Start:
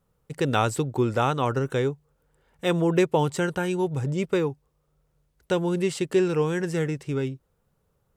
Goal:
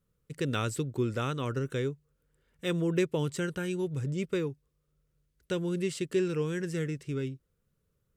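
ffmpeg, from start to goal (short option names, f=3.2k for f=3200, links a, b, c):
-af "equalizer=f=810:w=1.9:g=-14.5,volume=-5dB"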